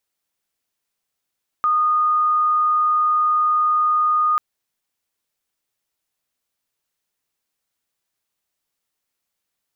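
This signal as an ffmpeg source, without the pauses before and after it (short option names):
-f lavfi -i "aevalsrc='0.188*sin(2*PI*1230*t)':d=2.74:s=44100"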